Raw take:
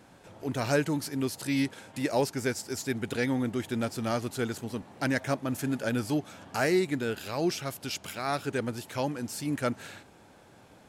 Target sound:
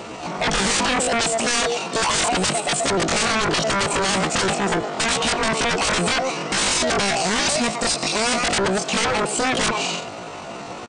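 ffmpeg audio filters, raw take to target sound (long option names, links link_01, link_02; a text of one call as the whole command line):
ffmpeg -i in.wav -filter_complex "[0:a]equalizer=frequency=400:width=7.1:gain=9,bandreject=frequency=920:width=6.8,asplit=2[link_01][link_02];[link_02]adelay=110,highpass=300,lowpass=3400,asoftclip=type=hard:threshold=-24.5dB,volume=-15dB[link_03];[link_01][link_03]amix=inputs=2:normalize=0,aresample=11025,aeval=exprs='0.168*sin(PI/2*8.91*val(0)/0.168)':channel_layout=same,aresample=44100,asetrate=76340,aresample=44100,atempo=0.577676,volume=-1dB" out.wav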